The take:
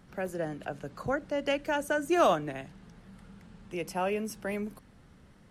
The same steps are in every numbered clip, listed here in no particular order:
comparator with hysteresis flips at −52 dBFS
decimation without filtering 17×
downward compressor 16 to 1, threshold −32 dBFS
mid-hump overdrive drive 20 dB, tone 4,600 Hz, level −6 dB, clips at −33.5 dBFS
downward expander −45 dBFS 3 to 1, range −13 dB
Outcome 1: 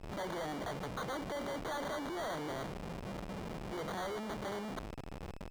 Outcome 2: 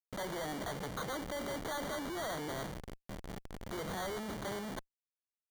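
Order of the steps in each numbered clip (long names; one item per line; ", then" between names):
downward compressor, then comparator with hysteresis, then decimation without filtering, then mid-hump overdrive, then downward expander
downward compressor, then downward expander, then comparator with hysteresis, then mid-hump overdrive, then decimation without filtering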